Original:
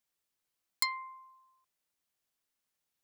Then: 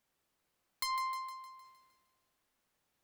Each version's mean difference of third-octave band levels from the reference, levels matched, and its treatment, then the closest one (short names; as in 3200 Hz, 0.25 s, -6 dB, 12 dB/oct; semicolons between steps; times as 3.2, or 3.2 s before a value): 9.0 dB: high shelf 2500 Hz -10.5 dB; in parallel at -10 dB: sine folder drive 19 dB, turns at -21 dBFS; on the sum: split-band echo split 1200 Hz, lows 83 ms, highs 0.154 s, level -9.5 dB; transient shaper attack +1 dB, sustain +7 dB; gain -4 dB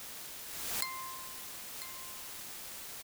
27.0 dB: compressor, threshold -37 dBFS, peak gain reduction 11.5 dB; requantised 8-bit, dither triangular; echo 0.995 s -11.5 dB; backwards sustainer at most 34 dB/s; gain +2.5 dB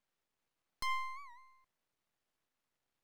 6.5 dB: LPF 1600 Hz 6 dB/oct; limiter -36 dBFS, peak gain reduction 11 dB; half-wave rectifier; record warp 78 rpm, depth 160 cents; gain +10 dB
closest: third